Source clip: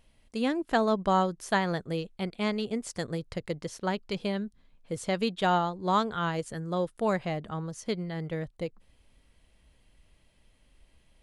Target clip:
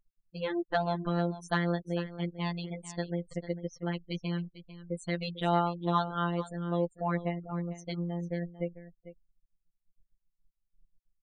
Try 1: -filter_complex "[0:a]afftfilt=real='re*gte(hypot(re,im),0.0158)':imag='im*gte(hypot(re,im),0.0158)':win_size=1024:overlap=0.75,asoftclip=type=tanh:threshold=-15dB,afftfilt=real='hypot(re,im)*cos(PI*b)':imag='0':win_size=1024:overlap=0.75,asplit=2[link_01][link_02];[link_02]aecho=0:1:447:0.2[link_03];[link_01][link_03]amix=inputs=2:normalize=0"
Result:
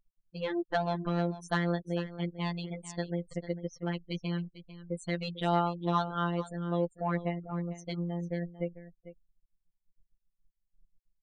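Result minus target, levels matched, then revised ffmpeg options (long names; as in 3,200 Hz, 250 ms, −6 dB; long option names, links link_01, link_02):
soft clipping: distortion +12 dB
-filter_complex "[0:a]afftfilt=real='re*gte(hypot(re,im),0.0158)':imag='im*gte(hypot(re,im),0.0158)':win_size=1024:overlap=0.75,asoftclip=type=tanh:threshold=-8.5dB,afftfilt=real='hypot(re,im)*cos(PI*b)':imag='0':win_size=1024:overlap=0.75,asplit=2[link_01][link_02];[link_02]aecho=0:1:447:0.2[link_03];[link_01][link_03]amix=inputs=2:normalize=0"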